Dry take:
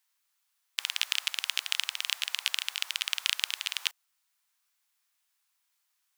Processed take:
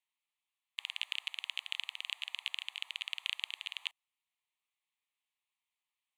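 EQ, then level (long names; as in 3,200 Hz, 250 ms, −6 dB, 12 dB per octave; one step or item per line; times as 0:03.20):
high-frequency loss of the air 83 metres
spectral tilt +1.5 dB per octave
phaser with its sweep stopped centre 1,500 Hz, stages 6
−7.0 dB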